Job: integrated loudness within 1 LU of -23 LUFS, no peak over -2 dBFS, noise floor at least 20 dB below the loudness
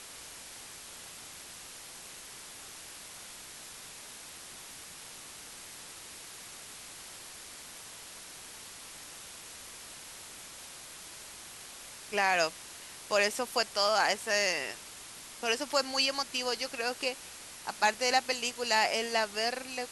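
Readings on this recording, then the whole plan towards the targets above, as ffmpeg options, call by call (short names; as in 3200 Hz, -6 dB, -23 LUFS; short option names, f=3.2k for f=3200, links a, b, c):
noise floor -48 dBFS; noise floor target -50 dBFS; loudness -30.0 LUFS; peak -13.0 dBFS; loudness target -23.0 LUFS
-> -af "afftdn=nr=6:nf=-48"
-af "volume=7dB"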